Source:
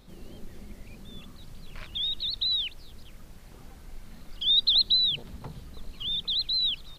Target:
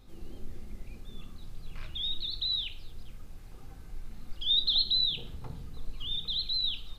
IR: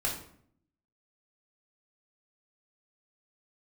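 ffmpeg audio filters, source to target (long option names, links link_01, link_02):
-filter_complex "[0:a]asplit=2[link_01][link_02];[1:a]atrim=start_sample=2205,lowshelf=frequency=490:gain=5.5[link_03];[link_02][link_03]afir=irnorm=-1:irlink=0,volume=-8.5dB[link_04];[link_01][link_04]amix=inputs=2:normalize=0,volume=-7.5dB"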